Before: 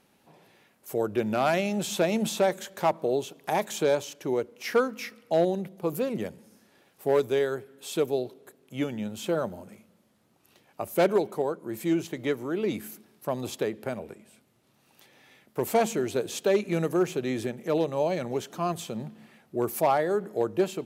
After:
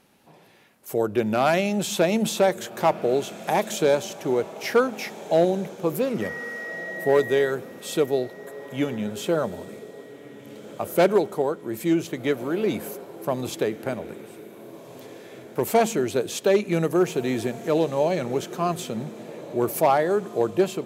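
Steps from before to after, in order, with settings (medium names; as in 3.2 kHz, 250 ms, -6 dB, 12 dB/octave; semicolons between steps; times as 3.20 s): 6.21–7.50 s: whistle 1.9 kHz -36 dBFS; echo that smears into a reverb 1637 ms, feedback 43%, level -16 dB; trim +4 dB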